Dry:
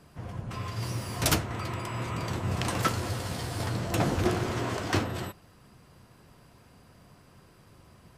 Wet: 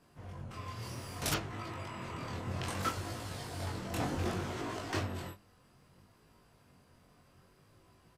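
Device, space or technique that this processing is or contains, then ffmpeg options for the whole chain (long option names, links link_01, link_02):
double-tracked vocal: -filter_complex "[0:a]asplit=2[link_01][link_02];[link_02]adelay=21,volume=-5dB[link_03];[link_01][link_03]amix=inputs=2:normalize=0,flanger=delay=18:depth=7.1:speed=0.63,bandreject=frequency=50:width_type=h:width=6,bandreject=frequency=100:width_type=h:width=6,bandreject=frequency=150:width_type=h:width=6,bandreject=frequency=200:width_type=h:width=6,asettb=1/sr,asplit=3[link_04][link_05][link_06];[link_04]atrim=end=1.344[link_07];[link_05]atrim=start=1.34:end=2.63,asetpts=PTS-STARTPTS,afade=type=in:duration=0.004:curve=qsin,afade=type=out:start_time=1.286:duration=0.004:curve=qsin,acrossover=split=6000[link_08][link_09];[link_09]acompressor=threshold=-56dB:ratio=4:attack=1:release=60[link_10];[link_08][link_10]amix=inputs=2:normalize=0[link_11];[link_06]atrim=start=2.626[link_12];[link_07][link_11]acrossfade=duration=0.004:curve1=hsin:curve2=qsin[link_13];[link_13][link_12]acrossfade=duration=0.004:curve1=qsin:curve2=hsin,volume=-5.5dB"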